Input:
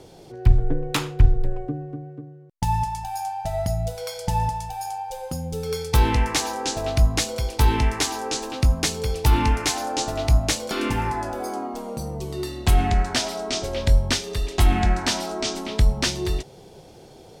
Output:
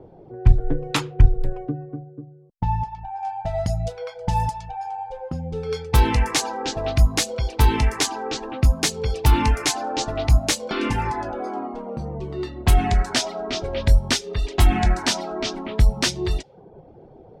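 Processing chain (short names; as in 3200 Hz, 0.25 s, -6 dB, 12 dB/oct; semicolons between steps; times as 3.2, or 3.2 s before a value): low-pass opened by the level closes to 770 Hz, open at -17.5 dBFS; 2.03–3.23 tape spacing loss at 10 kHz 31 dB; reverb removal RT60 0.52 s; gain +2 dB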